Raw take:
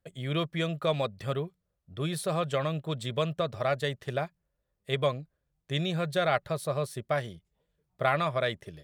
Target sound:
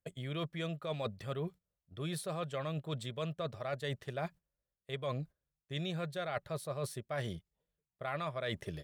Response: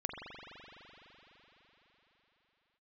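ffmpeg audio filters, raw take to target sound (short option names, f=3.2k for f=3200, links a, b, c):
-af "agate=range=-14dB:threshold=-48dB:ratio=16:detection=peak,areverse,acompressor=threshold=-40dB:ratio=6,areverse,volume=4dB"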